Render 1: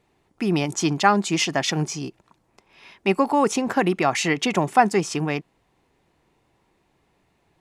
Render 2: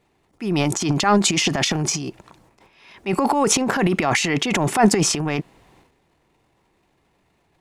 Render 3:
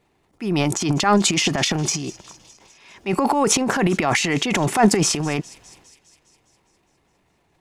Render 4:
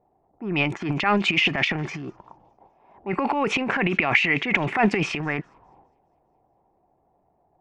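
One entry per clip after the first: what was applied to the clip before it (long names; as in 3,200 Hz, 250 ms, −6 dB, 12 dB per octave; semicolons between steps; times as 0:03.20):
transient designer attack −7 dB, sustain +12 dB; level +1 dB
delay with a high-pass on its return 204 ms, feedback 63%, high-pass 3,300 Hz, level −18 dB
envelope-controlled low-pass 740–2,500 Hz up, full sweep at −16.5 dBFS; level −5.5 dB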